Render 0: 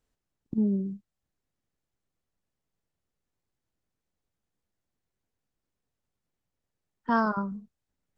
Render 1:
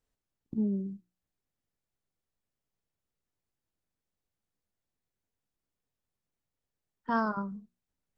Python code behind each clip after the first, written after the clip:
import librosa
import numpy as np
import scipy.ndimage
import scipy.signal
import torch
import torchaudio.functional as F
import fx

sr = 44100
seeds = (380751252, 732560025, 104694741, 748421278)

y = fx.hum_notches(x, sr, base_hz=60, count=6)
y = F.gain(torch.from_numpy(y), -4.0).numpy()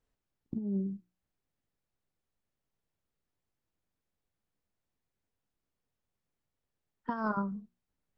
y = fx.high_shelf(x, sr, hz=4600.0, db=-8.5)
y = fx.over_compress(y, sr, threshold_db=-31.0, ratio=-0.5)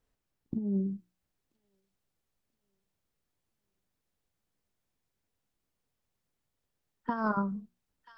y = fx.echo_wet_highpass(x, sr, ms=985, feedback_pct=44, hz=3000.0, wet_db=-3.5)
y = F.gain(torch.from_numpy(y), 2.5).numpy()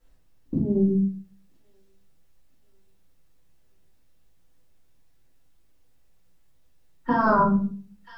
y = fx.room_shoebox(x, sr, seeds[0], volume_m3=30.0, walls='mixed', distance_m=1.8)
y = F.gain(torch.from_numpy(y), 2.0).numpy()